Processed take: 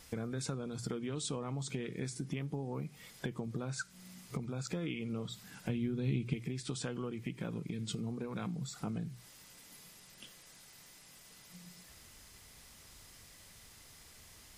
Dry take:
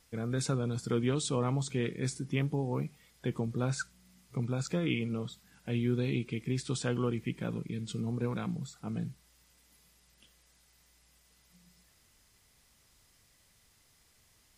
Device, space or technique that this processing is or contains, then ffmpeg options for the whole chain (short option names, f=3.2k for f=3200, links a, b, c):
serial compression, peaks first: -filter_complex "[0:a]acompressor=threshold=-41dB:ratio=4,acompressor=threshold=-48dB:ratio=2,asettb=1/sr,asplit=3[a][b][c];[a]atrim=end=5.694[d];[b]atrim=start=5.69:end=6.34,asetpts=PTS-STARTPTS,afade=t=in:d=0.004:c=qsin,afade=t=out:st=0.646:d=0.004:c=qsin,bass=f=250:g=9,treble=f=4k:g=0[e];[c]atrim=start=6.336[f];[d][e]acrossfade=d=0.004:c1=hsin:c2=qsin[g];[g][f]acrossfade=d=0.004:c1=qsin:c2=hsin,bandreject=f=60:t=h:w=6,bandreject=f=120:t=h:w=6,volume=9.5dB"